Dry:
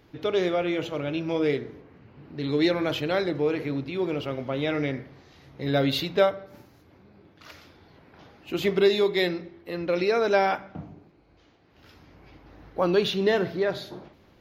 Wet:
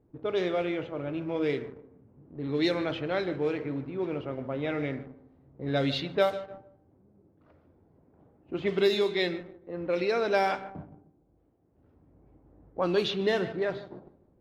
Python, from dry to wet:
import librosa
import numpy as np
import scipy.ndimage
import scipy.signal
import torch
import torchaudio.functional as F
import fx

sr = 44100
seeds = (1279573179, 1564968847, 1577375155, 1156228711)

p1 = fx.high_shelf(x, sr, hz=4100.0, db=5.0)
p2 = fx.echo_feedback(p1, sr, ms=151, feedback_pct=38, wet_db=-15.5)
p3 = fx.quant_dither(p2, sr, seeds[0], bits=6, dither='none')
p4 = p2 + F.gain(torch.from_numpy(p3), -9.0).numpy()
p5 = fx.comb_fb(p4, sr, f0_hz=260.0, decay_s=1.2, harmonics='all', damping=0.0, mix_pct=50)
p6 = fx.env_lowpass(p5, sr, base_hz=550.0, full_db=-18.5)
y = F.gain(torch.from_numpy(p6), -1.0).numpy()